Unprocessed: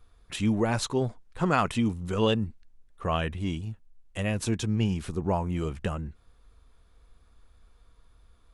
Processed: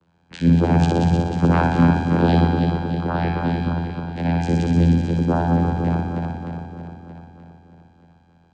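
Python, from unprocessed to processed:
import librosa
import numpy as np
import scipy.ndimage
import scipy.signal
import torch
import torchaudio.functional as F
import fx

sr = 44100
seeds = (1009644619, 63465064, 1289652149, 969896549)

p1 = fx.reverse_delay_fb(x, sr, ms=155, feedback_pct=77, wet_db=-5.0)
p2 = fx.vocoder(p1, sr, bands=8, carrier='saw', carrier_hz=85.0)
p3 = p2 + fx.room_flutter(p2, sr, wall_m=10.3, rt60_s=1.0, dry=0)
y = p3 * librosa.db_to_amplitude(8.5)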